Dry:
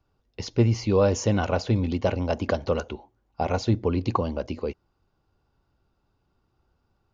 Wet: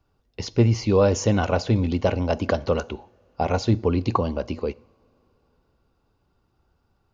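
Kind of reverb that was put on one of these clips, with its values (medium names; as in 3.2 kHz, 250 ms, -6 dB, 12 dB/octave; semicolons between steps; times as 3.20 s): two-slope reverb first 0.56 s, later 4.1 s, from -21 dB, DRR 20 dB; trim +2.5 dB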